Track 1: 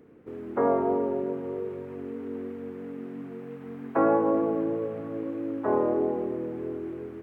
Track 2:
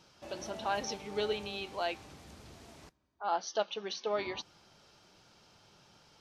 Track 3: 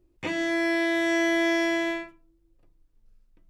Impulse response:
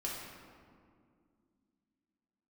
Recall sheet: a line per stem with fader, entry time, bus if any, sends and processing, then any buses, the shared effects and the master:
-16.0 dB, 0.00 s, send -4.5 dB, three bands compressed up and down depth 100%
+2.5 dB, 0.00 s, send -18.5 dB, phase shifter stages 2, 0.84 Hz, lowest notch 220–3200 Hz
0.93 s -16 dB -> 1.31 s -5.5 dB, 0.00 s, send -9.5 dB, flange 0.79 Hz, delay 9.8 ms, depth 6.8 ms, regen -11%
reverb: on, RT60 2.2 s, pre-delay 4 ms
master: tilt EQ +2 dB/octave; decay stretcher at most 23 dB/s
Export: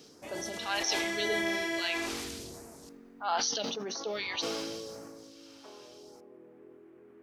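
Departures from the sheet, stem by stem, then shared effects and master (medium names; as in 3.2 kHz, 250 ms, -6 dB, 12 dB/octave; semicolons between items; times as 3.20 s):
stem 1 -16.0 dB -> -25.5 dB; reverb return -9.5 dB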